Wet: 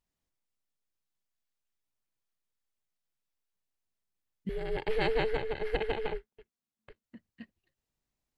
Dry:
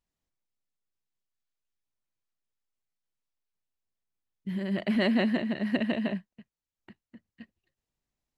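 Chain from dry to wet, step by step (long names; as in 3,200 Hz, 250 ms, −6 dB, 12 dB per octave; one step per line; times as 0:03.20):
0:04.49–0:07.04: ring modulation 220 Hz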